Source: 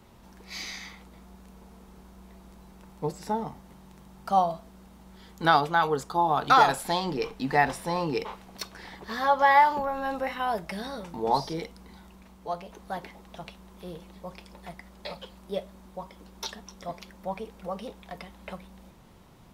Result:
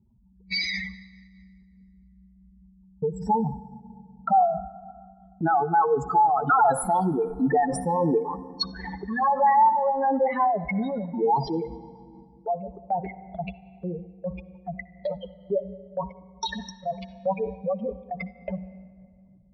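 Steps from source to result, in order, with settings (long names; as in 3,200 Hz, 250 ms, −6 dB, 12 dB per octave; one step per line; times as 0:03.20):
expanding power law on the bin magnitudes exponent 3.8
noise gate −45 dBFS, range −16 dB
in parallel at +0.5 dB: downward compressor, threshold −34 dBFS, peak gain reduction 17 dB
on the sum: brickwall limiter −17.5 dBFS, peak gain reduction 8.5 dB
on a send at −15.5 dB: convolution reverb RT60 2.2 s, pre-delay 60 ms
on the sum: amplitude modulation by smooth noise, depth 55%
level +7 dB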